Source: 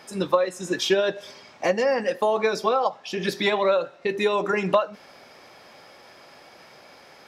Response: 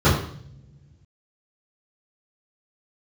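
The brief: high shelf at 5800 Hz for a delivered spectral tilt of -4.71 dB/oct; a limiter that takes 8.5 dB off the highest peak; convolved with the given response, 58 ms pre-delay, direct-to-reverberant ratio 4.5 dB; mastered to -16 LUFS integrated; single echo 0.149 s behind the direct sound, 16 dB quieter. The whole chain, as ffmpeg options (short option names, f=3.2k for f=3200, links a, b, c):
-filter_complex "[0:a]highshelf=f=5.8k:g=6,alimiter=limit=-16dB:level=0:latency=1,aecho=1:1:149:0.158,asplit=2[a][b];[1:a]atrim=start_sample=2205,adelay=58[c];[b][c]afir=irnorm=-1:irlink=0,volume=-26dB[d];[a][d]amix=inputs=2:normalize=0,volume=7.5dB"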